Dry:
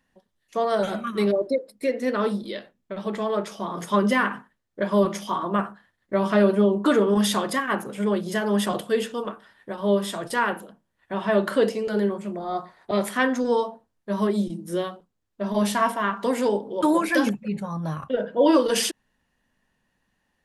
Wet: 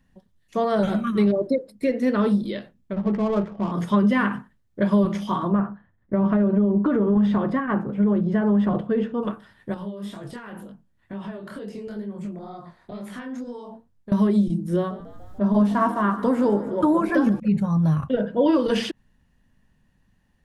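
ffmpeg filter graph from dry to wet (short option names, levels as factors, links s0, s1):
-filter_complex "[0:a]asettb=1/sr,asplit=3[s0][s1][s2];[s0]atrim=end=2.934[s3];[s1]atrim=start=2.93:end=3.72,asetpts=PTS-STARTPTS,afade=t=in:d=0.004:c=qsin,afade=t=out:st=0.786:d=0.004:c=qsin,lowpass=f=2000:p=1,adynamicsmooth=sensitivity=5.5:basefreq=670[s4];[s2]atrim=start=3.716[s5];[s3][s4]acrossfade=d=0.004:c1=hsin:c2=qsin[s6];[s6][s5]acrossfade=d=0.004:c1=qsin:c2=hsin,asettb=1/sr,asplit=3[s7][s8][s9];[s7]atrim=end=5.524[s10];[s8]atrim=start=5.52:end=9.23,asetpts=PTS-STARTPTS,afade=t=in:d=0.004:c=qsin,afade=t=out:st=3.706:d=0.004:c=qsin,lowpass=1500,acompressor=threshold=0.1:ratio=6:attack=3.2:release=140:knee=1:detection=peak[s11];[s9]atrim=start=9.226[s12];[s10][s11]acrossfade=d=0.004:c1=hsin:c2=qsin[s13];[s13][s12]acrossfade=d=0.004:c1=qsin:c2=hsin,asettb=1/sr,asplit=3[s14][s15][s16];[s14]atrim=end=9.744[s17];[s15]atrim=start=9.74:end=14.12,asetpts=PTS-STARTPTS,afade=t=in:d=0.004:c=qsin,afade=t=out:st=4.376:d=0.004:c=qsin,acompressor=threshold=0.0224:ratio=8:attack=3.2:release=140:knee=1:detection=peak,flanger=delay=20:depth=7.2:speed=2.1[s18];[s16]atrim=start=14.116[s19];[s17][s18]acrossfade=d=0.004:c1=hsin:c2=qsin[s20];[s20][s19]acrossfade=d=0.004:c1=qsin:c2=hsin,asettb=1/sr,asplit=3[s21][s22][s23];[s21]atrim=end=14.764[s24];[s22]atrim=start=14.76:end=17.4,asetpts=PTS-STARTPTS,afade=t=in:d=0.004:c=qsin,afade=t=out:st=2.636:d=0.004:c=qsin,highshelf=f=1700:t=q:w=1.5:g=-7,acompressor=mode=upward:threshold=0.0316:ratio=2.5:attack=3.2:release=140:knee=2.83:detection=peak,asplit=7[s25][s26][s27][s28][s29][s30][s31];[s26]adelay=145,afreqshift=54,volume=0.126[s32];[s27]adelay=290,afreqshift=108,volume=0.0804[s33];[s28]adelay=435,afreqshift=162,volume=0.0513[s34];[s29]adelay=580,afreqshift=216,volume=0.0331[s35];[s30]adelay=725,afreqshift=270,volume=0.0211[s36];[s31]adelay=870,afreqshift=324,volume=0.0135[s37];[s25][s32][s33][s34][s35][s36][s37]amix=inputs=7:normalize=0,atrim=end_sample=116424[s38];[s23]atrim=start=17.396[s39];[s24][s38]acrossfade=d=0.004:c1=hsin:c2=qsin[s40];[s40][s39]acrossfade=d=0.004:c1=qsin:c2=hsin,acrossover=split=4100[s41][s42];[s42]acompressor=threshold=0.00316:ratio=4:attack=1:release=60[s43];[s41][s43]amix=inputs=2:normalize=0,bass=f=250:g=14,treble=f=4000:g=0,acompressor=threshold=0.178:ratio=6"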